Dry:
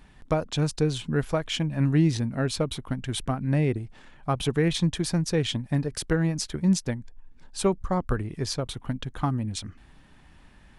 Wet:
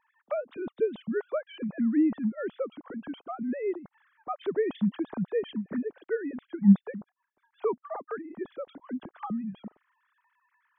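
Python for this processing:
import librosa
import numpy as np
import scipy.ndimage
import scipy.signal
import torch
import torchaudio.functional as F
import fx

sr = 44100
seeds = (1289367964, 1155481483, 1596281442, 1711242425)

y = fx.sine_speech(x, sr)
y = fx.peak_eq(y, sr, hz=2800.0, db=-12.0, octaves=1.1)
y = y * 10.0 ** (-3.5 / 20.0)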